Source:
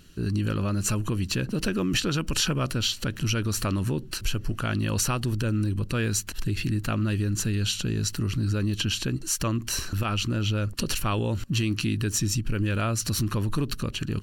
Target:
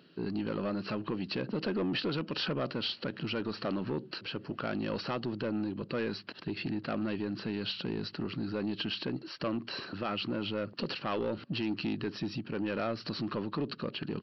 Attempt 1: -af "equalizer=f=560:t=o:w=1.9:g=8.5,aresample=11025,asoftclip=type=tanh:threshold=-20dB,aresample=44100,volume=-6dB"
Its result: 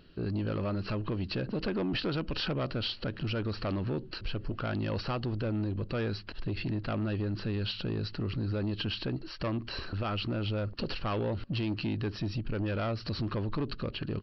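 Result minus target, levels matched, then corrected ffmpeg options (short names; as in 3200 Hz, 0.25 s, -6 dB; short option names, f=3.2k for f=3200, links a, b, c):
125 Hz band +6.5 dB
-af "highpass=f=150:w=0.5412,highpass=f=150:w=1.3066,equalizer=f=560:t=o:w=1.9:g=8.5,aresample=11025,asoftclip=type=tanh:threshold=-20dB,aresample=44100,volume=-6dB"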